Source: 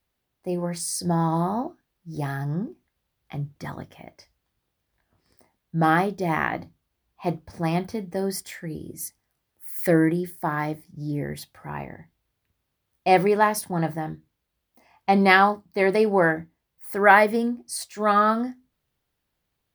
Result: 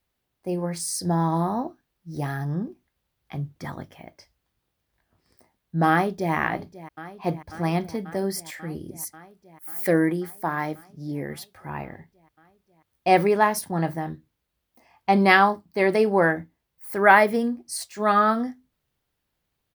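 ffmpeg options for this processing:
-filter_complex "[0:a]asplit=2[a][b];[b]afade=t=in:st=5.89:d=0.01,afade=t=out:st=6.34:d=0.01,aecho=0:1:540|1080|1620|2160|2700|3240|3780|4320|4860|5400|5940|6480:0.149624|0.119699|0.0957591|0.0766073|0.0612858|0.0490286|0.0392229|0.0313783|0.0251027|0.0200821|0.0160657|0.0128526[c];[a][c]amix=inputs=2:normalize=0,asettb=1/sr,asplit=3[d][e][f];[d]atrim=end=9.674[g];[e]atrim=start=9.67:end=11.55,asetpts=PTS-STARTPTS,afade=t=in:d=0.004:c=qsin,afade=t=out:st=1.876:d=0.004:c=qsin,highpass=f=190:p=1[h];[f]atrim=start=11.546[i];[g][h]acrossfade=d=0.004:c1=hsin:c2=qsin[j];[j][i]acrossfade=d=0.004:c1=qsin:c2=hsin"

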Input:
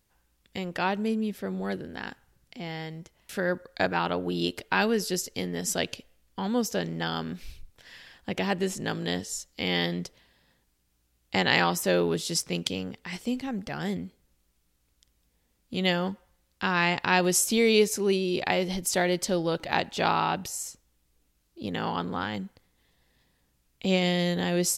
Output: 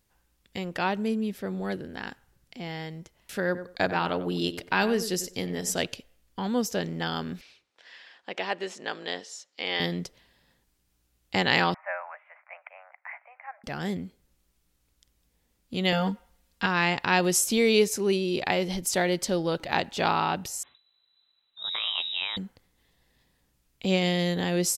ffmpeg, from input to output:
-filter_complex "[0:a]asplit=3[a][b][c];[a]afade=t=out:st=3.54:d=0.02[d];[b]asplit=2[e][f];[f]adelay=95,lowpass=f=2k:p=1,volume=-12dB,asplit=2[g][h];[h]adelay=95,lowpass=f=2k:p=1,volume=0.18[i];[e][g][i]amix=inputs=3:normalize=0,afade=t=in:st=3.54:d=0.02,afade=t=out:st=5.85:d=0.02[j];[c]afade=t=in:st=5.85:d=0.02[k];[d][j][k]amix=inputs=3:normalize=0,asettb=1/sr,asplit=3[l][m][n];[l]atrim=end=7.414[o];[m]atrim=start=7.41:end=9.8,asetpts=PTS-STARTPTS,afade=t=in:d=0.004:c=qsin,afade=t=out:st=2.386:d=0.004:c=qsin,highpass=480,lowpass=4.8k[p];[n]atrim=start=9.796[q];[o][p]acrossfade=d=0.004:c1=hsin:c2=qsin[r];[r][q]acrossfade=d=0.004:c1=qsin:c2=hsin,asettb=1/sr,asplit=3[s][t][u];[s]atrim=end=11.744[v];[t]atrim=start=11.74:end=13.64,asetpts=PTS-STARTPTS,afade=t=in:d=0.004:c=qsin,afade=t=out:st=1.896:d=0.004:c=qsin,asuperpass=centerf=1200:order=20:qfactor=0.69[w];[u]atrim=start=13.636[x];[v][w]acrossfade=d=0.004:c1=hsin:c2=qsin[y];[y][x]acrossfade=d=0.004:c1=qsin:c2=hsin,asettb=1/sr,asplit=3[z][aa][ab];[z]atrim=end=15.924[ac];[aa]atrim=start=15.92:end=16.66,asetpts=PTS-STARTPTS,afade=t=in:d=0.004:c=qsin,afade=t=out:st=0.736:d=0.004:c=qsin,aecho=1:1:4.3:0.92,atrim=end_sample=32634[ad];[ab]atrim=start=16.656[ae];[ac][ad]acrossfade=d=0.004:c1=hsin:c2=qsin[af];[af][ae]acrossfade=d=0.004:c1=qsin:c2=hsin,asettb=1/sr,asplit=3[ag][ah][ai];[ag]atrim=end=20.634[aj];[ah]atrim=start=20.63:end=22.37,asetpts=PTS-STARTPTS,afade=t=in:d=0.004:c=qsin,afade=t=out:st=1.736:d=0.004:c=qsin,lowpass=f=3.4k:t=q:w=0.5098,lowpass=f=3.4k:t=q:w=0.6013,lowpass=f=3.4k:t=q:w=0.9,lowpass=f=3.4k:t=q:w=2.563,afreqshift=-4000[ak];[ai]atrim=start=22.366[al];[aj][ak]acrossfade=d=0.004:c1=hsin:c2=qsin[am];[am][al]acrossfade=d=0.004:c1=qsin:c2=hsin"

